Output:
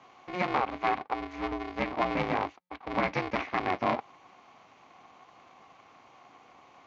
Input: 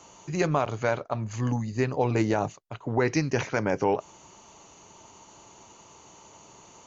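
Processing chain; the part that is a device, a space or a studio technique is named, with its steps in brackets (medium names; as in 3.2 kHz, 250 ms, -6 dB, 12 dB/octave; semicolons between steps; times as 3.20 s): ring modulator pedal into a guitar cabinet (polarity switched at an audio rate 180 Hz; cabinet simulation 100–4300 Hz, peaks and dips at 270 Hz +4 dB, 770 Hz +8 dB, 1.1 kHz +7 dB, 2.2 kHz +9 dB); trim -7.5 dB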